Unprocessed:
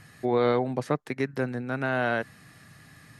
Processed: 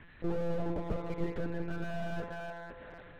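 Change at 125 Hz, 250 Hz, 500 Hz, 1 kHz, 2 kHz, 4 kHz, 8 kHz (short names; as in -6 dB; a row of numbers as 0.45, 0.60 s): -5.5 dB, -7.5 dB, -10.0 dB, -12.5 dB, -13.0 dB, -11.5 dB, n/a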